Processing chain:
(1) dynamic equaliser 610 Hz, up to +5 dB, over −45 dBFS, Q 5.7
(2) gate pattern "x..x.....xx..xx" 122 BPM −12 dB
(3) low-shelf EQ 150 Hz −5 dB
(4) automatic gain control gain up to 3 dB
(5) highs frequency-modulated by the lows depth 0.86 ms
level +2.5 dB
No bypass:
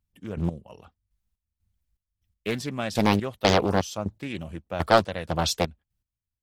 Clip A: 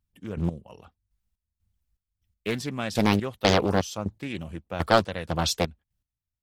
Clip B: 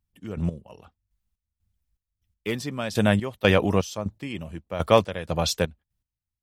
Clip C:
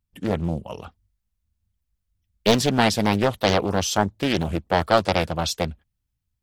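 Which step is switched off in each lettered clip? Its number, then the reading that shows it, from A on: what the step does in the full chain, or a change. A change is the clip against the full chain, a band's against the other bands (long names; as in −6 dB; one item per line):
1, 1 kHz band −1.5 dB
5, 1 kHz band −4.0 dB
2, 8 kHz band +2.0 dB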